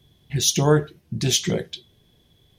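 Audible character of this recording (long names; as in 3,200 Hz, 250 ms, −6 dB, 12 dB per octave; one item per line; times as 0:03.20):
background noise floor −61 dBFS
spectral slope −4.0 dB per octave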